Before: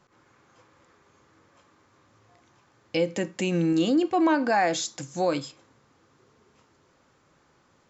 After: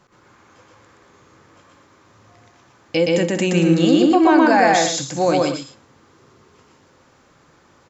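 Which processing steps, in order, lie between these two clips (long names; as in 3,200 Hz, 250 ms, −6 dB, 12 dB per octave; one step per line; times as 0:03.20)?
loudspeakers that aren't time-aligned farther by 42 metres −1 dB, 64 metres −11 dB, 80 metres −11 dB
level +6.5 dB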